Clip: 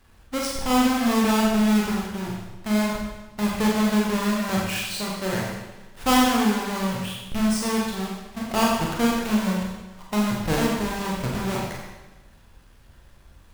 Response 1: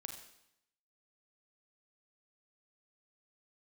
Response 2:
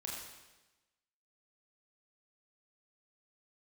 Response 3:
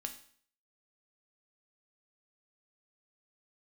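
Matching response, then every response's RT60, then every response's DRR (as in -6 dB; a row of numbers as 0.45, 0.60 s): 2; 0.80, 1.1, 0.55 s; 3.5, -3.5, 4.5 dB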